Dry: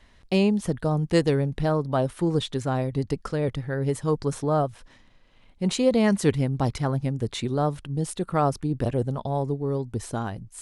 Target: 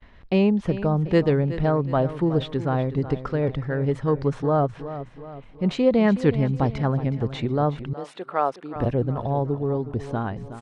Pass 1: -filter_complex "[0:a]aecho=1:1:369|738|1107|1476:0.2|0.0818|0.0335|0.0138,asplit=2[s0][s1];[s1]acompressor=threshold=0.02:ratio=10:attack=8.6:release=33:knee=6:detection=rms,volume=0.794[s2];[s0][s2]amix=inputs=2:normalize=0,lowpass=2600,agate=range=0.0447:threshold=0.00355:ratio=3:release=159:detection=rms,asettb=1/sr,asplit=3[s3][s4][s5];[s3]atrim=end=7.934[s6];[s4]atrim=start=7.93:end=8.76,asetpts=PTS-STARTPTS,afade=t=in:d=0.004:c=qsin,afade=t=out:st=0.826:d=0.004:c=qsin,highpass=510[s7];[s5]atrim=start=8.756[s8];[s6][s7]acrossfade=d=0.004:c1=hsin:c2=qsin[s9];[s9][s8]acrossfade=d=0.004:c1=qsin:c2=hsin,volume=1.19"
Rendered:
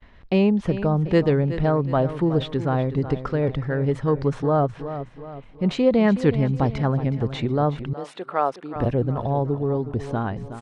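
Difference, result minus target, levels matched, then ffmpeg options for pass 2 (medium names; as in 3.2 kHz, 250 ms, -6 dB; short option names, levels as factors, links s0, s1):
compression: peak gain reduction -9.5 dB
-filter_complex "[0:a]aecho=1:1:369|738|1107|1476:0.2|0.0818|0.0335|0.0138,asplit=2[s0][s1];[s1]acompressor=threshold=0.00596:ratio=10:attack=8.6:release=33:knee=6:detection=rms,volume=0.794[s2];[s0][s2]amix=inputs=2:normalize=0,lowpass=2600,agate=range=0.0447:threshold=0.00355:ratio=3:release=159:detection=rms,asettb=1/sr,asplit=3[s3][s4][s5];[s3]atrim=end=7.934[s6];[s4]atrim=start=7.93:end=8.76,asetpts=PTS-STARTPTS,afade=t=in:d=0.004:c=qsin,afade=t=out:st=0.826:d=0.004:c=qsin,highpass=510[s7];[s5]atrim=start=8.756[s8];[s6][s7]acrossfade=d=0.004:c1=hsin:c2=qsin[s9];[s9][s8]acrossfade=d=0.004:c1=qsin:c2=hsin,volume=1.19"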